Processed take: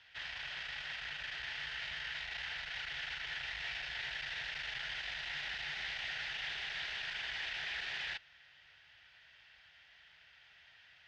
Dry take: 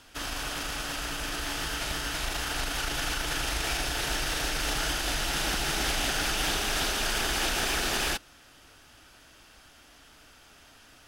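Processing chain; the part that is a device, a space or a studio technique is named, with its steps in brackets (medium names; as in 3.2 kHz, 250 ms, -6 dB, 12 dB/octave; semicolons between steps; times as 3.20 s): scooped metal amplifier (valve stage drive 34 dB, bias 0.6; cabinet simulation 97–3700 Hz, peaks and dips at 150 Hz +4 dB, 350 Hz +4 dB, 1.2 kHz -9 dB, 1.9 kHz +9 dB; amplifier tone stack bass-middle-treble 10-0-10); trim +1.5 dB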